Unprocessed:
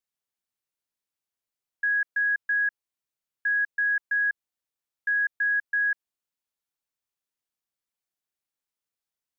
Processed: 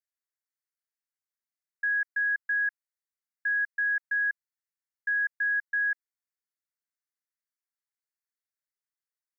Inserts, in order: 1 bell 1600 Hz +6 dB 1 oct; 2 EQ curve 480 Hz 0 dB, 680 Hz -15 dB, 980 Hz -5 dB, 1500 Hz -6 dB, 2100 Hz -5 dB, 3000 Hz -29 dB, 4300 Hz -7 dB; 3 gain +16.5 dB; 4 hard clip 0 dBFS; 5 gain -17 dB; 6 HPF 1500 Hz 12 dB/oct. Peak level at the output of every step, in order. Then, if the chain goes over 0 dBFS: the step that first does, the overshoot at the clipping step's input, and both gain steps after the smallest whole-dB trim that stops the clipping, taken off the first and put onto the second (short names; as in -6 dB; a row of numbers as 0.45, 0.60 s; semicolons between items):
-15.0, -20.5, -4.0, -4.0, -21.0, -23.0 dBFS; no overload